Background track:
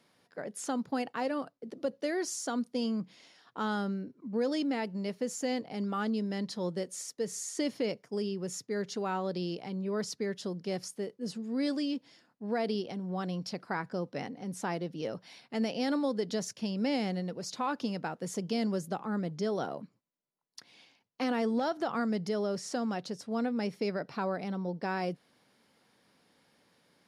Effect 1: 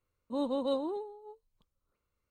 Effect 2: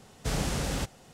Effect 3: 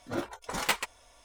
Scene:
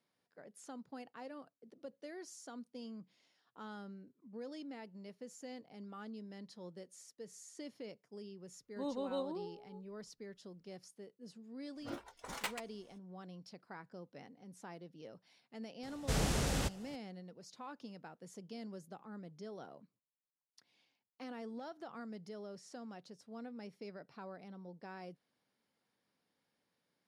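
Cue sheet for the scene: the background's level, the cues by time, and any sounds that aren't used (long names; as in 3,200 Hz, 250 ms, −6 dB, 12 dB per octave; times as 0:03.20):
background track −16 dB
0:08.46: mix in 1 −7.5 dB
0:11.75: mix in 3 −12 dB, fades 0.02 s
0:15.83: mix in 2 −3.5 dB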